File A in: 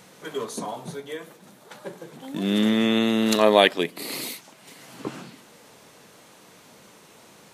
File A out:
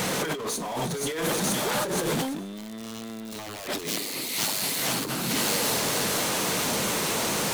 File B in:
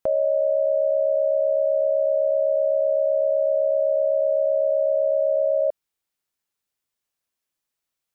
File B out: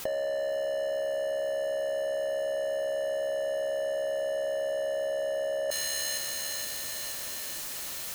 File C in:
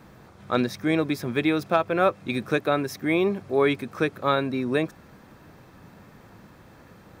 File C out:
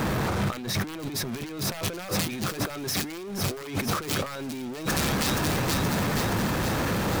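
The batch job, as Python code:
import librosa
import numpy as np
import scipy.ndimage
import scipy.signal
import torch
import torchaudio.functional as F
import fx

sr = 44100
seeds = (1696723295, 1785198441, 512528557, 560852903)

p1 = (np.mod(10.0 ** (12.5 / 20.0) * x + 1.0, 2.0) - 1.0) / 10.0 ** (12.5 / 20.0)
p2 = fx.power_curve(p1, sr, exponent=0.5)
p3 = p2 + fx.echo_wet_highpass(p2, sr, ms=473, feedback_pct=64, hz=4000.0, wet_db=-3.5, dry=0)
y = fx.over_compress(p3, sr, threshold_db=-30.0, ratio=-1.0)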